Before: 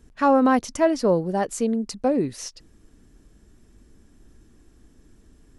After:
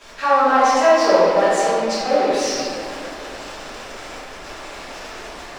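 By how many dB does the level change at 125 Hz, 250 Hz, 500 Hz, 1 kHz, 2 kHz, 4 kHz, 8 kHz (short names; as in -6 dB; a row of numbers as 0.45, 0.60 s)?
-5.5, -3.5, +7.0, +9.0, +11.0, +13.5, +7.5 dB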